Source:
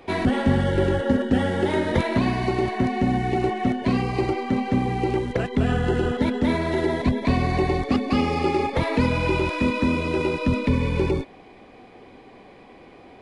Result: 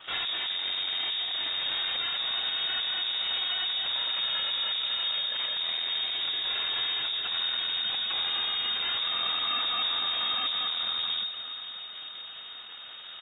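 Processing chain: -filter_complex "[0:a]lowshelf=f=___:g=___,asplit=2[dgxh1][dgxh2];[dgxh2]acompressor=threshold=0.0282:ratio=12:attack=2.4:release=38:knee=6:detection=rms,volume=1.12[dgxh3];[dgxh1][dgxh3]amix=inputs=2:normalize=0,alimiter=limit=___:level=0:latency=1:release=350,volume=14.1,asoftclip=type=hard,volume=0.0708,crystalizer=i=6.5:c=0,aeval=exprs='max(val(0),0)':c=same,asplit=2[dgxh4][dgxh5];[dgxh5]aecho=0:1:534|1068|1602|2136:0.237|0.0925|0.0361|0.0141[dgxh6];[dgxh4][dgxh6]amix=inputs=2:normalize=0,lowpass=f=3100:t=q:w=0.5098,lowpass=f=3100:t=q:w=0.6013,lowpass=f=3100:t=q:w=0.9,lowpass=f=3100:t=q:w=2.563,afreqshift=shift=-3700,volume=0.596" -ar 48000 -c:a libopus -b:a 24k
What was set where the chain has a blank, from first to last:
160, 6, 0.282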